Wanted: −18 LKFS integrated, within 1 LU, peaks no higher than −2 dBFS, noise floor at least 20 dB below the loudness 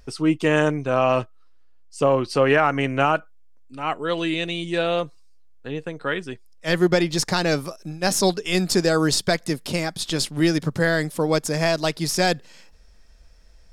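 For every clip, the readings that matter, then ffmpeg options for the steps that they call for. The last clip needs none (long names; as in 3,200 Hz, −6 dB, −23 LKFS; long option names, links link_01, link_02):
integrated loudness −22.0 LKFS; sample peak −7.0 dBFS; target loudness −18.0 LKFS
→ -af "volume=4dB"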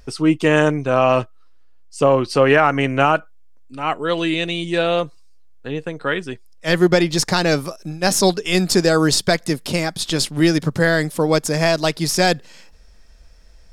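integrated loudness −18.0 LKFS; sample peak −3.0 dBFS; background noise floor −45 dBFS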